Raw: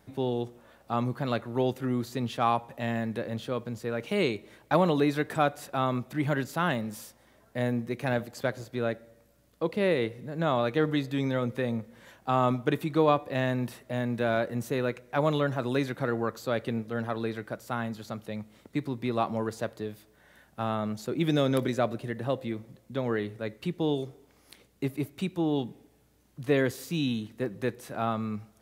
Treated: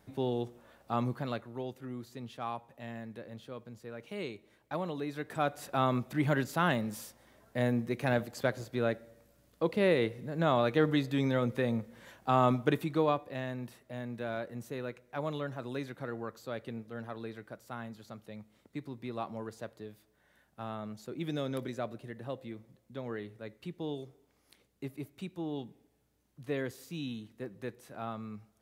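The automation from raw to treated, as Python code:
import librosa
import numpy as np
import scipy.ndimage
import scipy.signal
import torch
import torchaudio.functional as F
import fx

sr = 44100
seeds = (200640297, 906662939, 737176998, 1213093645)

y = fx.gain(x, sr, db=fx.line((1.1, -3.0), (1.63, -12.5), (5.06, -12.5), (5.7, -1.0), (12.66, -1.0), (13.44, -10.0)))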